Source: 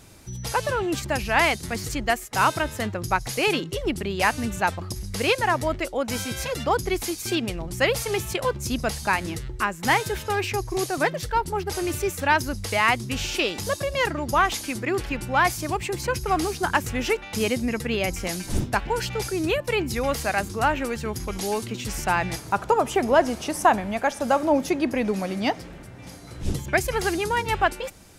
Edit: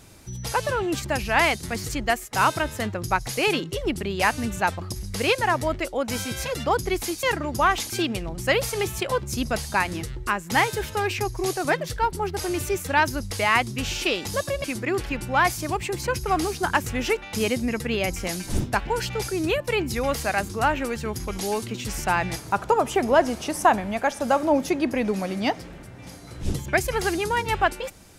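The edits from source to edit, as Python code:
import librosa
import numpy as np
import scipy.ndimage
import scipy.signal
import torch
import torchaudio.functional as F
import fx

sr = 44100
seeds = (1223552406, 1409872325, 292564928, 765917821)

y = fx.edit(x, sr, fx.move(start_s=13.97, length_s=0.67, to_s=7.23), tone=tone)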